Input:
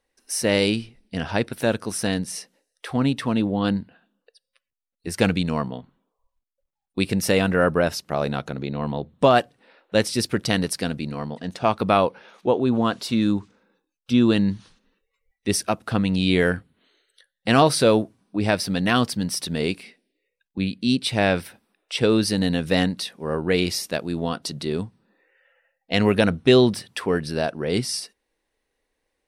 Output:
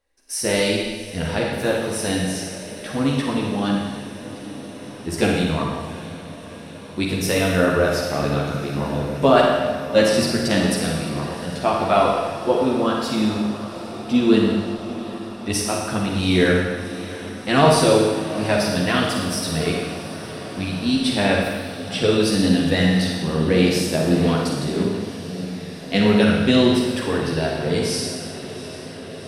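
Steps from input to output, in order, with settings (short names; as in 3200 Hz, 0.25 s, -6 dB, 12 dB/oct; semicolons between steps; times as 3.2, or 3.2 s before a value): diffused feedback echo 0.747 s, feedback 77%, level -15 dB; chorus voices 6, 0.86 Hz, delay 13 ms, depth 1.8 ms; Schroeder reverb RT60 1.4 s, DRR -0.5 dB; gain +2 dB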